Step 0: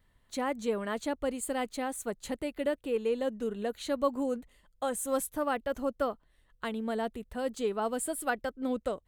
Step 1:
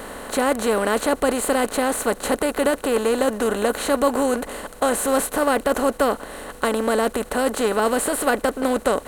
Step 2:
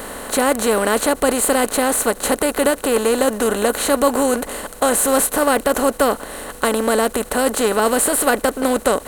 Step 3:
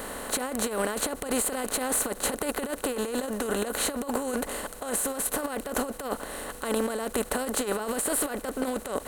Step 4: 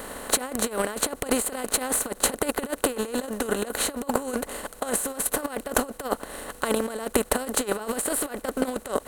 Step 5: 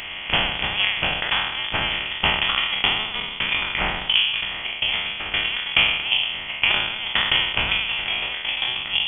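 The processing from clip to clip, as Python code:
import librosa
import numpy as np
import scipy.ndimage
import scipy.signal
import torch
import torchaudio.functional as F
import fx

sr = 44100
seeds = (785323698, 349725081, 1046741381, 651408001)

y1 = fx.bin_compress(x, sr, power=0.4)
y1 = y1 * 10.0 ** (6.5 / 20.0)
y2 = fx.high_shelf(y1, sr, hz=5700.0, db=7.0)
y2 = fx.end_taper(y2, sr, db_per_s=490.0)
y2 = y2 * 10.0 ** (3.0 / 20.0)
y3 = fx.over_compress(y2, sr, threshold_db=-19.0, ratio=-0.5)
y3 = y3 * 10.0 ** (-9.0 / 20.0)
y4 = fx.transient(y3, sr, attack_db=10, sustain_db=-4)
y4 = y4 * 10.0 ** (-1.0 / 20.0)
y5 = fx.spec_trails(y4, sr, decay_s=1.05)
y5 = scipy.signal.sosfilt(scipy.signal.butter(4, 700.0, 'highpass', fs=sr, output='sos'), y5)
y5 = fx.freq_invert(y5, sr, carrier_hz=3900)
y5 = y5 * 10.0 ** (7.0 / 20.0)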